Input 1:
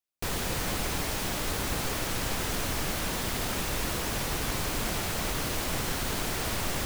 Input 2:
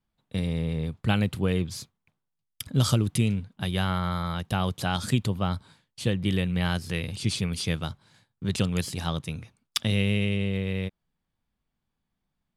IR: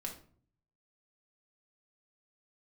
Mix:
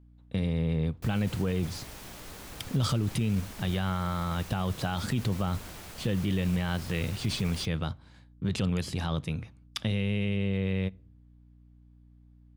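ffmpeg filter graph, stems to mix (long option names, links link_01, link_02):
-filter_complex "[0:a]acrusher=bits=7:dc=4:mix=0:aa=0.000001,adelay=800,volume=-14dB[link_01];[1:a]lowpass=frequency=3000:poles=1,aeval=exprs='val(0)+0.00158*(sin(2*PI*60*n/s)+sin(2*PI*2*60*n/s)/2+sin(2*PI*3*60*n/s)/3+sin(2*PI*4*60*n/s)/4+sin(2*PI*5*60*n/s)/5)':channel_layout=same,volume=1.5dB,asplit=2[link_02][link_03];[link_03]volume=-20.5dB[link_04];[2:a]atrim=start_sample=2205[link_05];[link_04][link_05]afir=irnorm=-1:irlink=0[link_06];[link_01][link_02][link_06]amix=inputs=3:normalize=0,alimiter=limit=-19.5dB:level=0:latency=1:release=18"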